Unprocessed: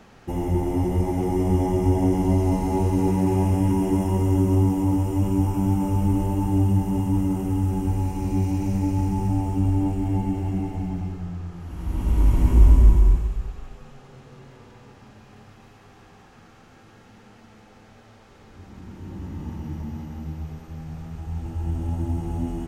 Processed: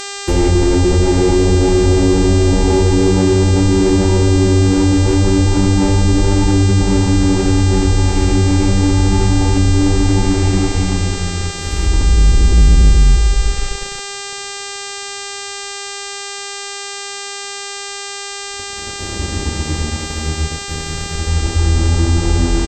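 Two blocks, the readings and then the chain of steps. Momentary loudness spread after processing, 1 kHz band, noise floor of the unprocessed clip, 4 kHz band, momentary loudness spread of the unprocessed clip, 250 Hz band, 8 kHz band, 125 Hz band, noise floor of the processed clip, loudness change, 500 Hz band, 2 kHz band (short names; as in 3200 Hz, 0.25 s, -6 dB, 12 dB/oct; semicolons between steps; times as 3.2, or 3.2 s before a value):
12 LU, +8.5 dB, -50 dBFS, n/a, 15 LU, +8.5 dB, +23.0 dB, +9.0 dB, -27 dBFS, +8.0 dB, +13.0 dB, +22.0 dB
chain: graphic EQ 125/1000/8000 Hz -9/-11/+5 dB; treble ducked by the level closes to 710 Hz, closed at -20 dBFS; comb 2.2 ms, depth 49%; sample leveller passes 3; in parallel at -2 dB: negative-ratio compressor -16 dBFS; on the sum: buzz 400 Hz, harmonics 21, -25 dBFS -1 dB/oct; downsampling 32000 Hz; gain -2 dB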